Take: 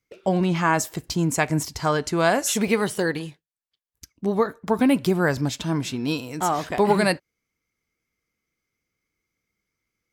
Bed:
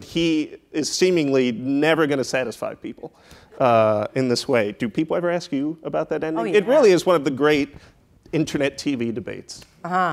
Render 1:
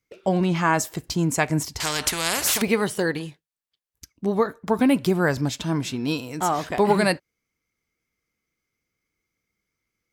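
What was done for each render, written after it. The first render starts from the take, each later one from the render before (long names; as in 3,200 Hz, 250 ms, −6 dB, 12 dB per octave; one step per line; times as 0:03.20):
0:01.80–0:02.62: every bin compressed towards the loudest bin 4 to 1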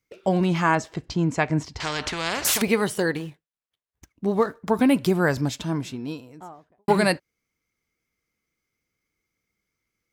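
0:00.75–0:02.45: high-frequency loss of the air 140 metres
0:03.16–0:04.61: running median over 9 samples
0:05.26–0:06.88: fade out and dull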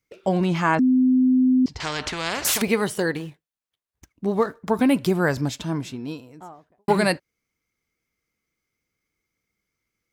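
0:00.79–0:01.66: beep over 256 Hz −14 dBFS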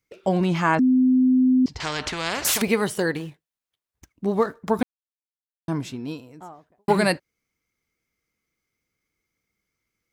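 0:04.83–0:05.68: silence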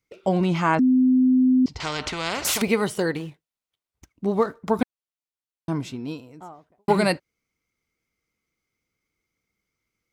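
high-shelf EQ 8,900 Hz −5 dB
notch filter 1,700 Hz, Q 11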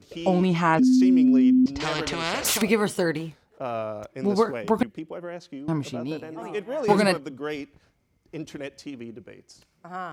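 mix in bed −14 dB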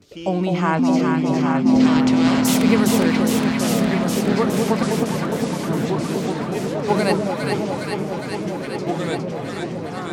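on a send: delay that swaps between a low-pass and a high-pass 205 ms, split 870 Hz, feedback 88%, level −2.5 dB
on the sum: delay with pitch and tempo change per echo 682 ms, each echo −3 semitones, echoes 3, each echo −6 dB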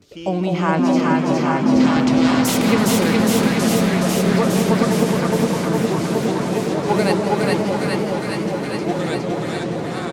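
on a send: repeating echo 419 ms, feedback 51%, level −3.5 dB
on the sum: feedback echo with a swinging delay time 166 ms, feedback 75%, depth 158 cents, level −13 dB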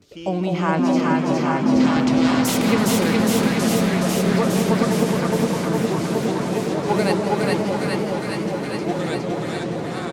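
level −2 dB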